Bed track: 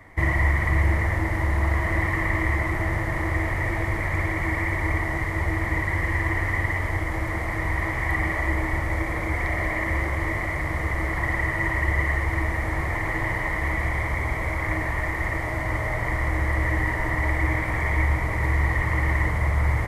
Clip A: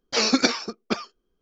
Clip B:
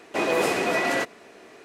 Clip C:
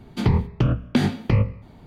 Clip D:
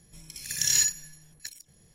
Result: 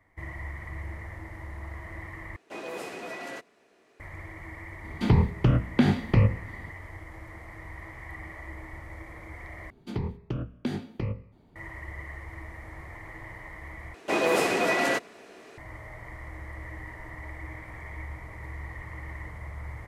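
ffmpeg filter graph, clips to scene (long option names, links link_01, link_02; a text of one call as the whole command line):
ffmpeg -i bed.wav -i cue0.wav -i cue1.wav -i cue2.wav -filter_complex "[2:a]asplit=2[link_01][link_02];[3:a]asplit=2[link_03][link_04];[0:a]volume=-17dB[link_05];[link_03]acrossover=split=3500[link_06][link_07];[link_07]acompressor=threshold=-43dB:ratio=4:attack=1:release=60[link_08];[link_06][link_08]amix=inputs=2:normalize=0[link_09];[link_04]equalizer=frequency=360:width_type=o:width=0.92:gain=5.5[link_10];[link_05]asplit=4[link_11][link_12][link_13][link_14];[link_11]atrim=end=2.364[link_15];[link_01]atrim=end=1.64,asetpts=PTS-STARTPTS,volume=-14.5dB[link_16];[link_12]atrim=start=3.996:end=9.704[link_17];[link_10]atrim=end=1.86,asetpts=PTS-STARTPTS,volume=-13.5dB[link_18];[link_13]atrim=start=11.556:end=13.944[link_19];[link_02]atrim=end=1.64,asetpts=PTS-STARTPTS,volume=-1dB[link_20];[link_14]atrim=start=15.576[link_21];[link_09]atrim=end=1.86,asetpts=PTS-STARTPTS,volume=-1.5dB,afade=type=in:duration=0.004:curve=hsin,afade=type=out:start_time=1.856:duration=0.004:curve=hsin,adelay=4840[link_22];[link_15][link_16]acrossfade=duration=0.004:curve1=hsin:curve2=hsin[link_23];[link_23][link_17]acrossfade=duration=0.004:curve1=hsin:curve2=hsin[link_24];[link_24][link_18]acrossfade=duration=0.004:curve1=hsin:curve2=hsin[link_25];[link_25][link_19]acrossfade=duration=0.004:curve1=hsin:curve2=hsin[link_26];[link_26][link_20]acrossfade=duration=0.004:curve1=hsin:curve2=hsin[link_27];[link_27][link_21]acrossfade=duration=0.004:curve1=hsin:curve2=hsin[link_28];[link_28][link_22]amix=inputs=2:normalize=0" out.wav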